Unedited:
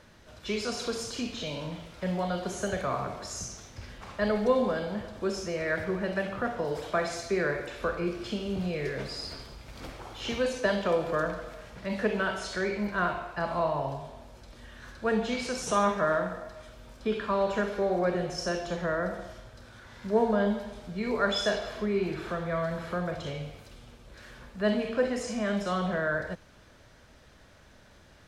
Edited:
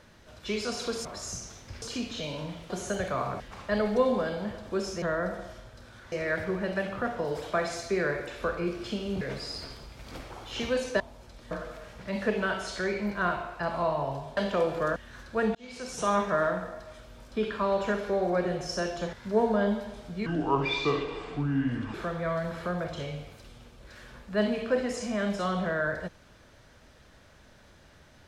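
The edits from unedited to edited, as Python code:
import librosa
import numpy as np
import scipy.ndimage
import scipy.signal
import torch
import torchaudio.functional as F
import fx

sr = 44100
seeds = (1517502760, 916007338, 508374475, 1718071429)

y = fx.edit(x, sr, fx.cut(start_s=1.93, length_s=0.5),
    fx.move(start_s=3.13, length_s=0.77, to_s=1.05),
    fx.cut(start_s=8.61, length_s=0.29),
    fx.swap(start_s=10.69, length_s=0.59, other_s=14.14, other_length_s=0.51),
    fx.fade_in_span(start_s=15.24, length_s=0.82, curve='qsin'),
    fx.move(start_s=18.82, length_s=1.1, to_s=5.52),
    fx.speed_span(start_s=21.05, length_s=1.16, speed=0.69), tone=tone)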